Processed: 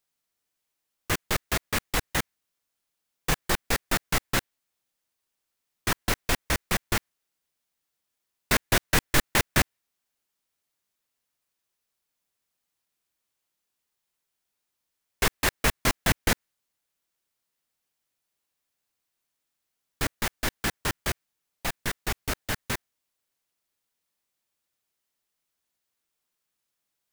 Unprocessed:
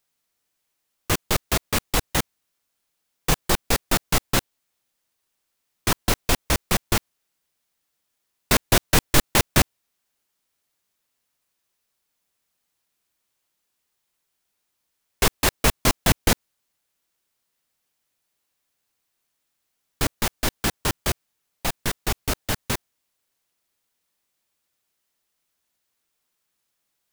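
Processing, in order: dynamic EQ 1800 Hz, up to +6 dB, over -40 dBFS, Q 1.6; gain -5.5 dB

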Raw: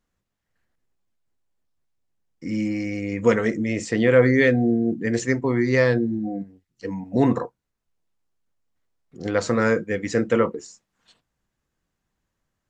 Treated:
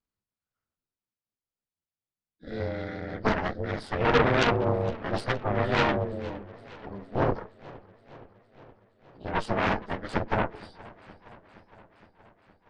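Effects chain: inharmonic rescaling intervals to 88%; added harmonics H 7 -13 dB, 8 -11 dB, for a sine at -5 dBFS; warbling echo 0.467 s, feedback 67%, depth 130 cents, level -20.5 dB; gain -6 dB

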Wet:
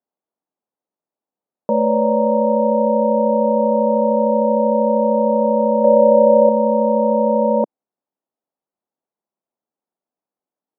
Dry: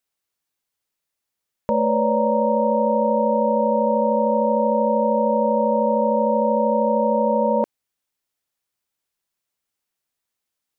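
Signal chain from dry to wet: Chebyshev band-pass 210–810 Hz, order 2; 5.84–6.49 dynamic EQ 600 Hz, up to +7 dB, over -34 dBFS, Q 1.9; gain +4 dB

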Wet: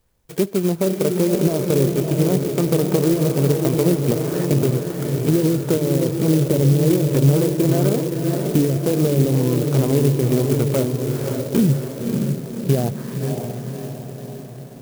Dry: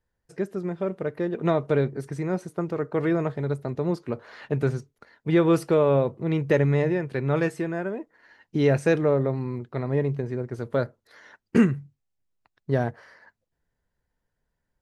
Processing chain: FFT order left unsorted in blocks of 16 samples; high shelf 8500 Hz +10 dB; in parallel at -1 dB: compressor, threshold -30 dBFS, peak gain reduction 17 dB; on the sum: limiter -13 dBFS, peak gain reduction 10 dB; treble ducked by the level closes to 340 Hz, closed at -17.5 dBFS; on a send: diffused feedback echo 0.581 s, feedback 57%, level -4 dB; on the sum: clock jitter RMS 0.078 ms; gain +7.5 dB

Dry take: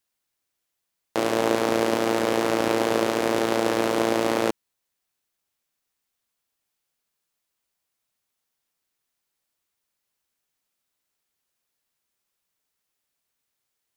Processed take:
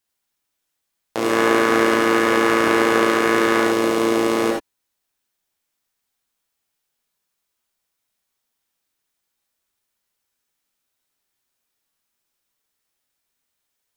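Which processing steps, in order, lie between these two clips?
1.29–3.64 bell 1600 Hz +9 dB 1.2 oct; non-linear reverb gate 0.1 s rising, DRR 0 dB

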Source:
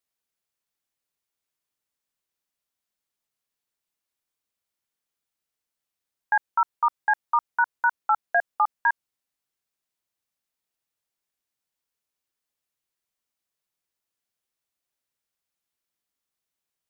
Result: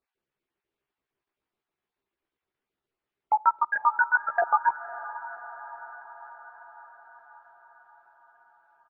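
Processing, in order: random spectral dropouts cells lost 26%; bell 370 Hz +11 dB 0.38 oct; in parallel at +1 dB: compressor 6:1, threshold -32 dBFS, peak gain reduction 14 dB; on the sum: limiter -14 dBFS, peak gain reduction 5 dB; vocal rider 0.5 s; tempo 1.9×; air absorption 400 m; doubler 15 ms -4 dB; diffused feedback echo 0.544 s, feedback 65%, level -14.5 dB; on a send at -23 dB: reverb RT60 0.70 s, pre-delay 7 ms; on the sum: gain +2.5 dB

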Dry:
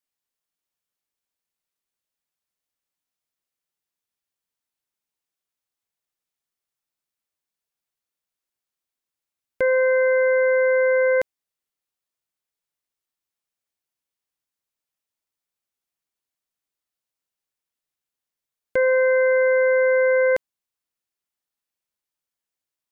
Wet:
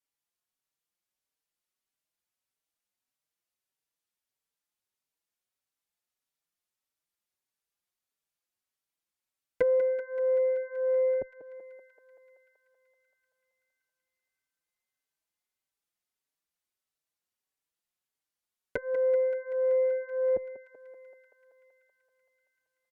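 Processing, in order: treble ducked by the level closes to 440 Hz, closed at -20 dBFS; thinning echo 0.191 s, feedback 81%, high-pass 410 Hz, level -10.5 dB; endless flanger 4.8 ms +1.6 Hz

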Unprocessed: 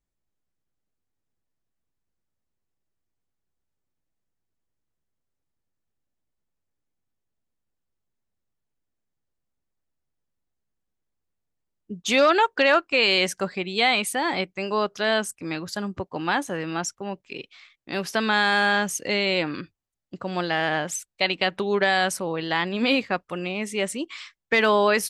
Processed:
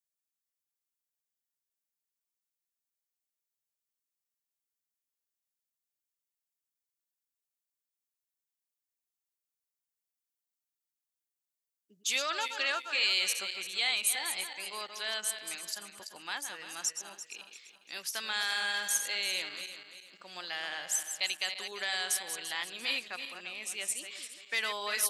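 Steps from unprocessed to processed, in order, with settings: regenerating reverse delay 0.171 s, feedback 58%, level -8 dB; differentiator

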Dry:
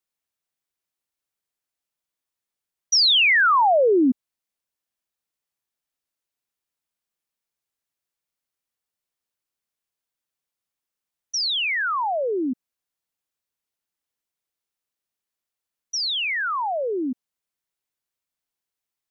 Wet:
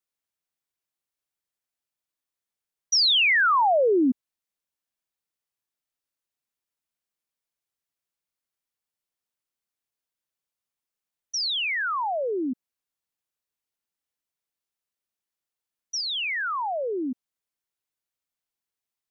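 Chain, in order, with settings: 16.01–16.91 LPF 5100 Hz; gain -3 dB

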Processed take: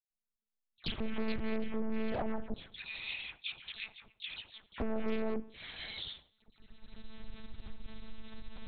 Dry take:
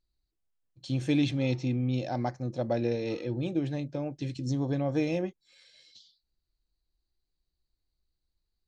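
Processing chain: recorder AGC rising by 16 dB/s; 2.43–4.71 inverse Chebyshev band-stop 100–830 Hz, stop band 60 dB; dynamic EQ 810 Hz, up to -7 dB, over -47 dBFS, Q 1; sample leveller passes 5; compressor 3:1, threshold -26 dBFS, peak gain reduction 6 dB; dispersion lows, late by 0.105 s, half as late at 1900 Hz; reverb RT60 0.75 s, pre-delay 12 ms, DRR 15.5 dB; monotone LPC vocoder at 8 kHz 220 Hz; Doppler distortion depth 0.68 ms; gain -7 dB

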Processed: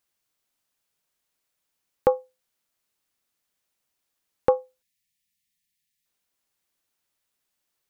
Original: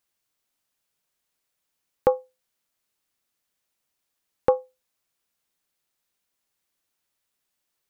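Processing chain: spectral delete 4.82–6.05, 240–1700 Hz

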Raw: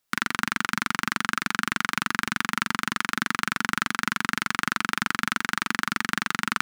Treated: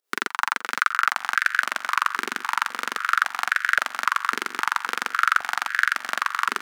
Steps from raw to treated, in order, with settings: pump 100 bpm, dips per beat 2, -14 dB, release 0.145 s; echo with dull and thin repeats by turns 0.265 s, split 1700 Hz, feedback 75%, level -12.5 dB; stepped high-pass 3.7 Hz 410–1600 Hz; gain -1 dB

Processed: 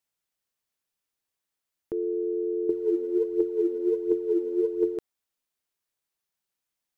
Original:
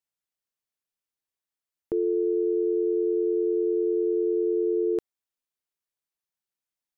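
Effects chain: limiter -27.5 dBFS, peak gain reduction 9 dB; 2.69–4.97 phaser 1.4 Hz, delay 4.2 ms, feedback 68%; gain +5 dB

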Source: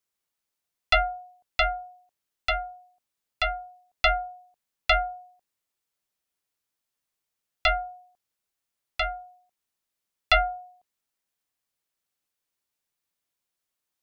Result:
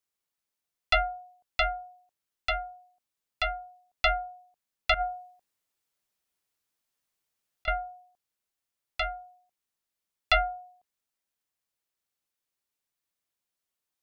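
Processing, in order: 4.94–7.68 negative-ratio compressor -27 dBFS, ratio -0.5; gain -3 dB

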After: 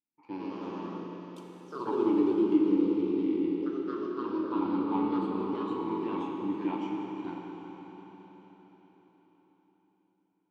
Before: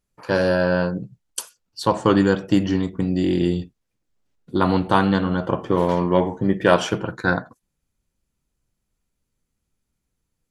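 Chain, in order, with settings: vowel filter u; echoes that change speed 0.134 s, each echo +2 st, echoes 3; reverb RT60 5.0 s, pre-delay 28 ms, DRR 0 dB; gain -6 dB

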